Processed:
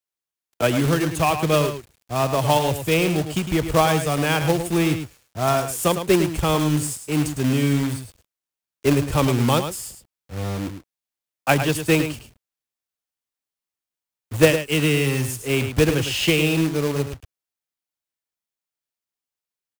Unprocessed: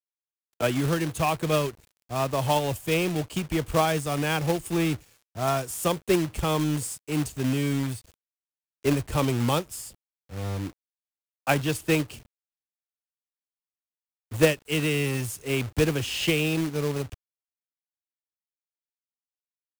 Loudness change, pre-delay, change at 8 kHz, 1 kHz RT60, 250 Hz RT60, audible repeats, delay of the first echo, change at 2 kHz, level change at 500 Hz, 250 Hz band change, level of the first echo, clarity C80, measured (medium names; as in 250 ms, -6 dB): +5.5 dB, no reverb, +5.5 dB, no reverb, no reverb, 1, 106 ms, +5.5 dB, +5.5 dB, +5.5 dB, -9.0 dB, no reverb